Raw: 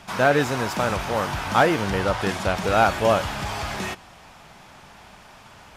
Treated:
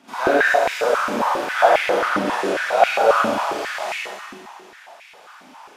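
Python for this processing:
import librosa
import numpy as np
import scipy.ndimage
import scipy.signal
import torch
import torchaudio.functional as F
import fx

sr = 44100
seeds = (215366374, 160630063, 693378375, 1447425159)

y = fx.rev_schroeder(x, sr, rt60_s=1.9, comb_ms=31, drr_db=-9.0)
y = fx.filter_held_highpass(y, sr, hz=7.4, low_hz=260.0, high_hz=2300.0)
y = y * 10.0 ** (-10.0 / 20.0)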